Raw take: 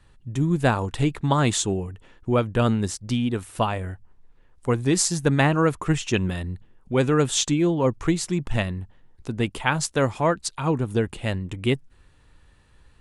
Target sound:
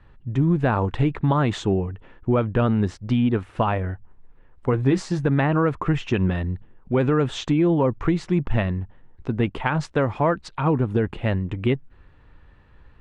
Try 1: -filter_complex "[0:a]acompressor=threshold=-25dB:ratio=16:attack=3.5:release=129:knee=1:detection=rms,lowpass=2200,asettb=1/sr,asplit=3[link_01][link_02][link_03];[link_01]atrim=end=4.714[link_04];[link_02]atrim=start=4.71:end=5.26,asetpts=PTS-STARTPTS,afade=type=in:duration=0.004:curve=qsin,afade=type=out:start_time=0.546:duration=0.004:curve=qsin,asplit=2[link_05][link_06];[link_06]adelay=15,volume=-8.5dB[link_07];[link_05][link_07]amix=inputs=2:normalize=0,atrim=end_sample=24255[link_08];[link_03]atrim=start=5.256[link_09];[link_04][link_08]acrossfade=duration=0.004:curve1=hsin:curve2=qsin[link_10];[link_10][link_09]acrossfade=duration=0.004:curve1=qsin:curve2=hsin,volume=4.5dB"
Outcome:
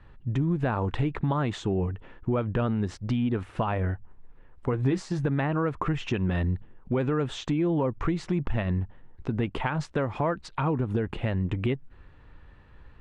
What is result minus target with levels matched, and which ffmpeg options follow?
downward compressor: peak gain reduction +6.5 dB
-filter_complex "[0:a]acompressor=threshold=-18dB:ratio=16:attack=3.5:release=129:knee=1:detection=rms,lowpass=2200,asettb=1/sr,asplit=3[link_01][link_02][link_03];[link_01]atrim=end=4.714[link_04];[link_02]atrim=start=4.71:end=5.26,asetpts=PTS-STARTPTS,afade=type=in:duration=0.004:curve=qsin,afade=type=out:start_time=0.546:duration=0.004:curve=qsin,asplit=2[link_05][link_06];[link_06]adelay=15,volume=-8.5dB[link_07];[link_05][link_07]amix=inputs=2:normalize=0,atrim=end_sample=24255[link_08];[link_03]atrim=start=5.256[link_09];[link_04][link_08]acrossfade=duration=0.004:curve1=hsin:curve2=qsin[link_10];[link_10][link_09]acrossfade=duration=0.004:curve1=qsin:curve2=hsin,volume=4.5dB"

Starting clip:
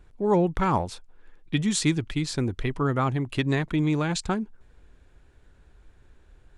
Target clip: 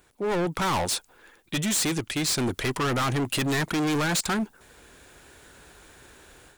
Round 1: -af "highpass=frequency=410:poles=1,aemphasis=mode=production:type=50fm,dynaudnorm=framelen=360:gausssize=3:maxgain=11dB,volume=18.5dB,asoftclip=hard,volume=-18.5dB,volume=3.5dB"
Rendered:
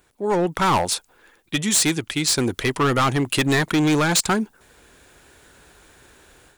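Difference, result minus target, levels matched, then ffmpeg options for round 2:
gain into a clipping stage and back: distortion −4 dB
-af "highpass=frequency=410:poles=1,aemphasis=mode=production:type=50fm,dynaudnorm=framelen=360:gausssize=3:maxgain=11dB,volume=27dB,asoftclip=hard,volume=-27dB,volume=3.5dB"

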